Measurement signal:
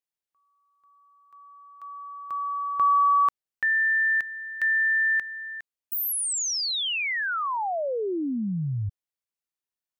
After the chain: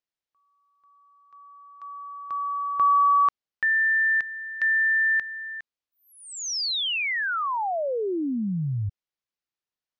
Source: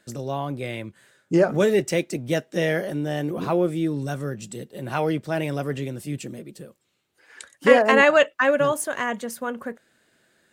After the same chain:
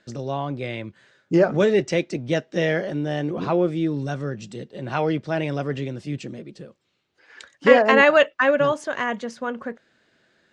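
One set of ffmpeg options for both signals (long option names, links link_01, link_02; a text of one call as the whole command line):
ffmpeg -i in.wav -af "lowpass=frequency=5900:width=0.5412,lowpass=frequency=5900:width=1.3066,volume=1dB" out.wav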